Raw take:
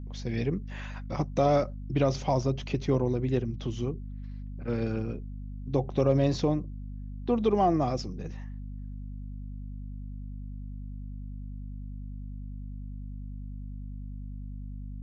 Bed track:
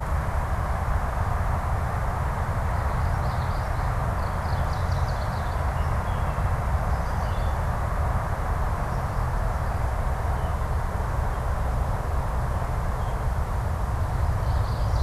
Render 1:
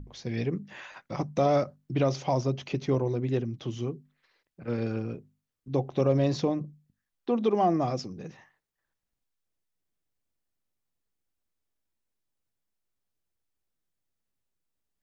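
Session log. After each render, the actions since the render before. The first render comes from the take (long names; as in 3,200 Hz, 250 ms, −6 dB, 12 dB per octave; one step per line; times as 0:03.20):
mains-hum notches 50/100/150/200/250 Hz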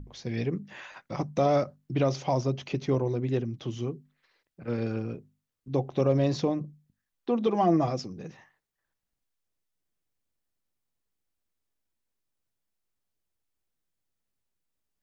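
0:07.46–0:07.88: comb filter 6.1 ms, depth 57%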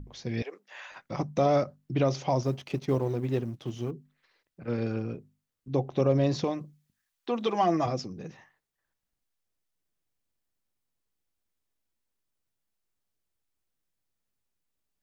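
0:00.42–0:00.90: high-pass filter 520 Hz 24 dB per octave
0:02.43–0:03.91: mu-law and A-law mismatch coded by A
0:06.44–0:07.86: tilt shelving filter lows −6.5 dB, about 720 Hz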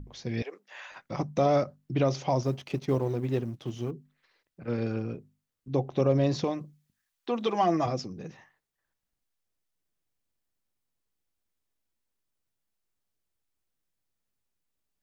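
no processing that can be heard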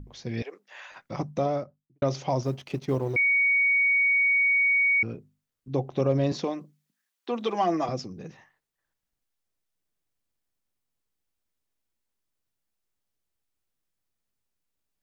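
0:01.18–0:02.02: fade out and dull
0:03.16–0:05.03: beep over 2,240 Hz −19 dBFS
0:06.32–0:07.89: high-pass filter 180 Hz 24 dB per octave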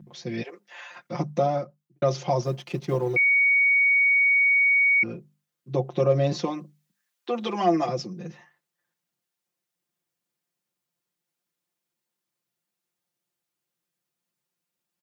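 high-pass filter 120 Hz 24 dB per octave
comb filter 5.7 ms, depth 90%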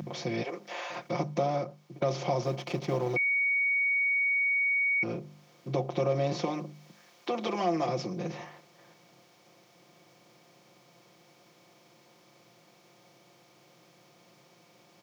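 compressor on every frequency bin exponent 0.6
downward compressor 1.5 to 1, threshold −40 dBFS, peak gain reduction 9.5 dB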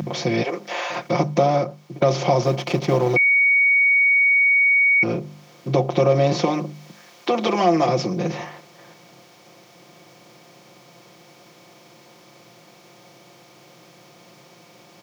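level +11 dB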